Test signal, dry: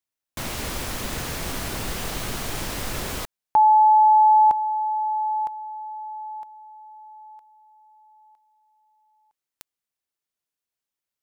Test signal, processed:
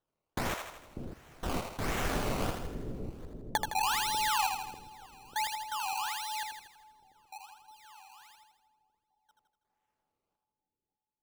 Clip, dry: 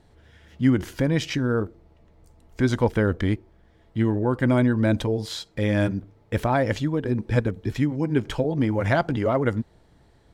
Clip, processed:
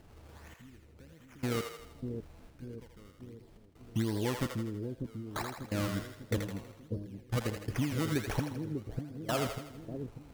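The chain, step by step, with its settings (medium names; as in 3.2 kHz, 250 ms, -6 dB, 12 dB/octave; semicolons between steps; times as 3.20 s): compression 6:1, threshold -29 dBFS; decimation with a swept rate 18×, swing 100% 1.4 Hz; trance gate "xxx.....x.x" 84 bpm -24 dB; on a send: two-band feedback delay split 480 Hz, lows 594 ms, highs 81 ms, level -4.5 dB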